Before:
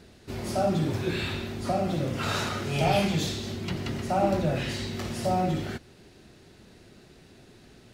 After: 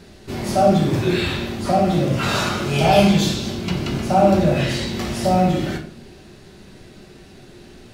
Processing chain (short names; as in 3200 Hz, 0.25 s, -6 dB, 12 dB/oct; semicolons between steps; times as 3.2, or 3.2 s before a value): 2.32–4.38 notch 1900 Hz, Q 12; on a send: reverb RT60 0.60 s, pre-delay 5 ms, DRR 2 dB; on the sum: gain +6.5 dB